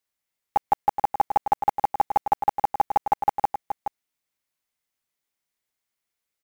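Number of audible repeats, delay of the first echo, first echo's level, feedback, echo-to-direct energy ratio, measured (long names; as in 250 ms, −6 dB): 1, 423 ms, −8.5 dB, repeats not evenly spaced, −8.5 dB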